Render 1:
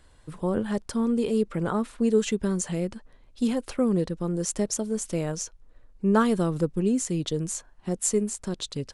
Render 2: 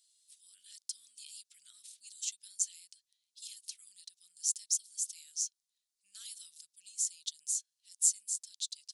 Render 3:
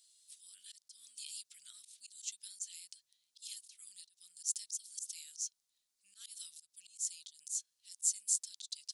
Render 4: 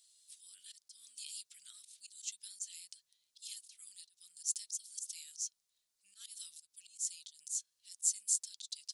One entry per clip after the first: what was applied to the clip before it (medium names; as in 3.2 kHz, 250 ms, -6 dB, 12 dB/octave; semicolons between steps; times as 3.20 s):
inverse Chebyshev high-pass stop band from 940 Hz, stop band 70 dB
slow attack 150 ms; trim +3.5 dB
flange 0.37 Hz, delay 1.5 ms, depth 1.3 ms, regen -74%; trim +4.5 dB